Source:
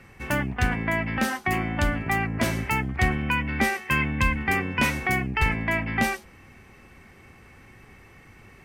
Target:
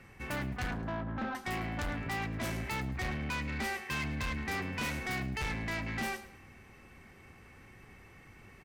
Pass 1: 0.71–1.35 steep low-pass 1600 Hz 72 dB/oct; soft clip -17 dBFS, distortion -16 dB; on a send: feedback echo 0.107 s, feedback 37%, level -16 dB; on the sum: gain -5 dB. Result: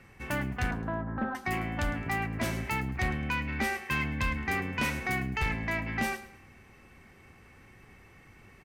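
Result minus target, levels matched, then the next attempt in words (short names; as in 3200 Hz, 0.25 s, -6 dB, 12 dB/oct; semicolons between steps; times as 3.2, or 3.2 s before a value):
soft clip: distortion -9 dB
0.71–1.35 steep low-pass 1600 Hz 72 dB/oct; soft clip -27 dBFS, distortion -7 dB; on a send: feedback echo 0.107 s, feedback 37%, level -16 dB; on the sum: gain -5 dB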